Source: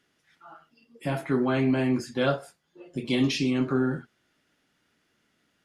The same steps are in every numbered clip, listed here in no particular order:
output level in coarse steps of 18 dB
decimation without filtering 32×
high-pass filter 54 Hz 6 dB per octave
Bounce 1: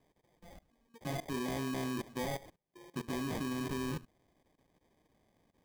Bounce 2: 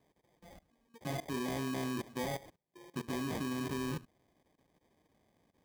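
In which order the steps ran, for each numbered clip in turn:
output level in coarse steps, then high-pass filter, then decimation without filtering
output level in coarse steps, then decimation without filtering, then high-pass filter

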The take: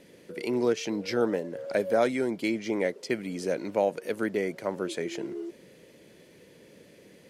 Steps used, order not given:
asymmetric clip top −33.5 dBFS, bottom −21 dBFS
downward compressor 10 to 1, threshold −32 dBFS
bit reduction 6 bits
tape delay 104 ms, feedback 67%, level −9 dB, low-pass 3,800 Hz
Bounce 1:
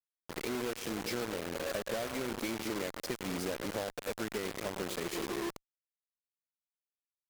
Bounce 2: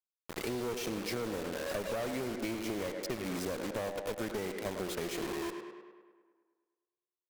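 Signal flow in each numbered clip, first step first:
tape delay, then downward compressor, then bit reduction, then asymmetric clip
bit reduction, then tape delay, then asymmetric clip, then downward compressor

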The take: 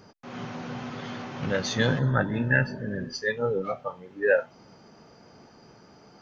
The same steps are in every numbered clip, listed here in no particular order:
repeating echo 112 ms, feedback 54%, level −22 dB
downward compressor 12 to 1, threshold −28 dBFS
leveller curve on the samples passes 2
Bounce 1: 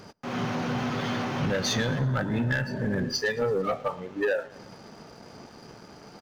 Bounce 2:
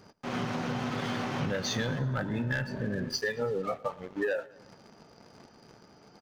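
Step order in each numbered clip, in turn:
downward compressor, then repeating echo, then leveller curve on the samples
leveller curve on the samples, then downward compressor, then repeating echo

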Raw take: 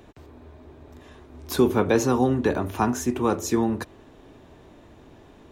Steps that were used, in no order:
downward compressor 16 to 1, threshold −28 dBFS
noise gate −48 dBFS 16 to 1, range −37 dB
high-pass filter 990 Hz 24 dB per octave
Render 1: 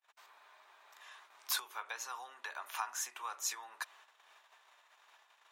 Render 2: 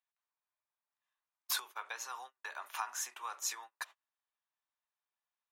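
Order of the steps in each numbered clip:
noise gate, then downward compressor, then high-pass filter
downward compressor, then high-pass filter, then noise gate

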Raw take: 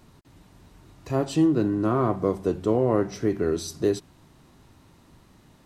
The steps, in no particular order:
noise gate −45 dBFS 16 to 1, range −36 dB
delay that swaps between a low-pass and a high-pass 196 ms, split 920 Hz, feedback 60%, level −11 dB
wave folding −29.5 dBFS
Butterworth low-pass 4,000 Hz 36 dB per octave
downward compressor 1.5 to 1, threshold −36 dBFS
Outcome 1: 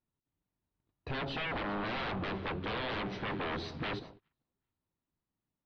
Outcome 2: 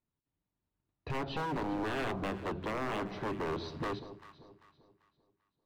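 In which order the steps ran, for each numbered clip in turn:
wave folding, then downward compressor, then delay that swaps between a low-pass and a high-pass, then noise gate, then Butterworth low-pass
downward compressor, then noise gate, then Butterworth low-pass, then wave folding, then delay that swaps between a low-pass and a high-pass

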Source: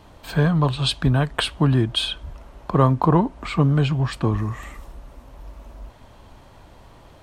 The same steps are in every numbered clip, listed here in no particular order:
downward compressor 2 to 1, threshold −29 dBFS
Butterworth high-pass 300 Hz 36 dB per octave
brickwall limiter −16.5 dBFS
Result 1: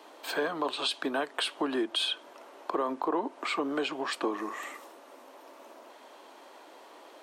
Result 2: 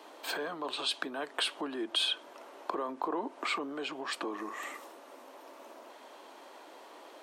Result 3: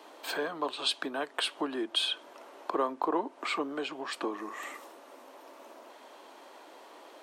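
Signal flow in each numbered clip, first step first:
Butterworth high-pass, then brickwall limiter, then downward compressor
brickwall limiter, then downward compressor, then Butterworth high-pass
downward compressor, then Butterworth high-pass, then brickwall limiter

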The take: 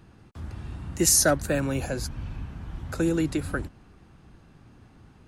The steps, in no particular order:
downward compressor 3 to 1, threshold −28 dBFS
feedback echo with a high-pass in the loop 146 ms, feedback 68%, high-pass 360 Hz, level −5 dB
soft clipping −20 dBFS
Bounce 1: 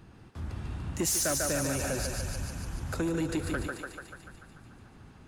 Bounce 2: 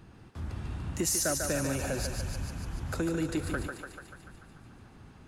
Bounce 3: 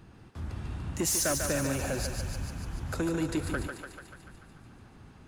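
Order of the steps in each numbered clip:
feedback echo with a high-pass in the loop, then soft clipping, then downward compressor
downward compressor, then feedback echo with a high-pass in the loop, then soft clipping
soft clipping, then downward compressor, then feedback echo with a high-pass in the loop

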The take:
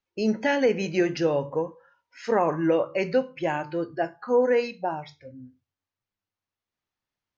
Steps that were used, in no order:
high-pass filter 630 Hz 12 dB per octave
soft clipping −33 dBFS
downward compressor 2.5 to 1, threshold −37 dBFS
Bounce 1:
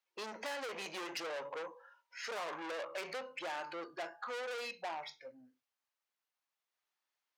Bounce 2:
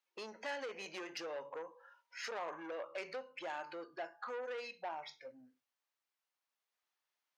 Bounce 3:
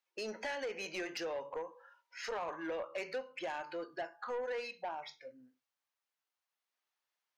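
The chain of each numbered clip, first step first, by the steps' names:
soft clipping, then high-pass filter, then downward compressor
downward compressor, then soft clipping, then high-pass filter
high-pass filter, then downward compressor, then soft clipping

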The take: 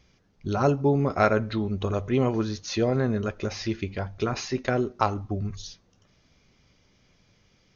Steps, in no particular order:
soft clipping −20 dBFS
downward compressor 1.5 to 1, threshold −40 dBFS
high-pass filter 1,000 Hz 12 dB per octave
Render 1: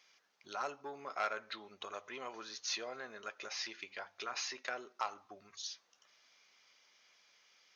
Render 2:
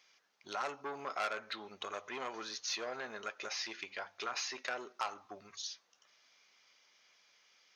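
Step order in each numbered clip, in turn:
downward compressor, then soft clipping, then high-pass filter
soft clipping, then high-pass filter, then downward compressor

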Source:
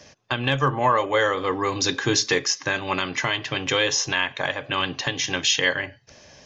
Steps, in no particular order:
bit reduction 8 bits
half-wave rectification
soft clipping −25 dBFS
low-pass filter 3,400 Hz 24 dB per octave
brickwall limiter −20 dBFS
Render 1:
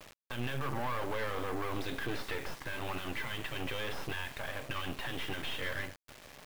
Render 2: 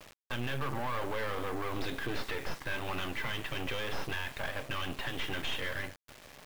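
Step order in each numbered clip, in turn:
brickwall limiter, then half-wave rectification, then low-pass filter, then bit reduction, then soft clipping
half-wave rectification, then low-pass filter, then brickwall limiter, then bit reduction, then soft clipping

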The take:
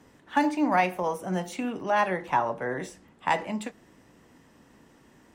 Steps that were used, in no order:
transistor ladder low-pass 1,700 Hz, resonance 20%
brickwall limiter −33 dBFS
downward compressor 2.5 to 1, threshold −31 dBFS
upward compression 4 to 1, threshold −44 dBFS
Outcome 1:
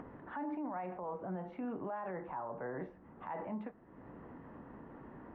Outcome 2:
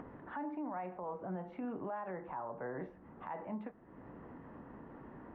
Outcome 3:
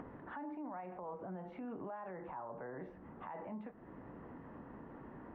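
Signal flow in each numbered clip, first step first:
transistor ladder low-pass, then upward compression, then brickwall limiter, then downward compressor
downward compressor, then transistor ladder low-pass, then upward compression, then brickwall limiter
downward compressor, then brickwall limiter, then transistor ladder low-pass, then upward compression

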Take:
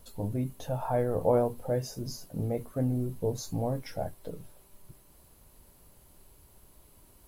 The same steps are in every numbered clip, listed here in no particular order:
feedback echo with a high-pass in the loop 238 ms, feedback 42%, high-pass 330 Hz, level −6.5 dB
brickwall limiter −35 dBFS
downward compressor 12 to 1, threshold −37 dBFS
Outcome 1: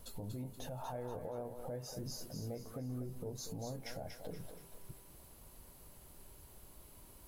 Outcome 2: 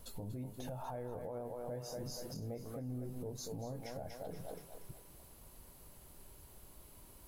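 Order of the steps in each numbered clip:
downward compressor, then brickwall limiter, then feedback echo with a high-pass in the loop
feedback echo with a high-pass in the loop, then downward compressor, then brickwall limiter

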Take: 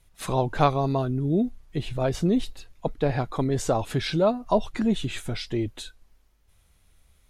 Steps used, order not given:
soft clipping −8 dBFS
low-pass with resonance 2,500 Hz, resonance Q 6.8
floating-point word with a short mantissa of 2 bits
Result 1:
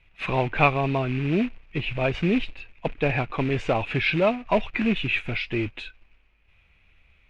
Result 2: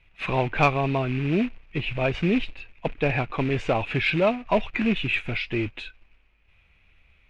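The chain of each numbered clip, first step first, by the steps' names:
floating-point word with a short mantissa, then soft clipping, then low-pass with resonance
floating-point word with a short mantissa, then low-pass with resonance, then soft clipping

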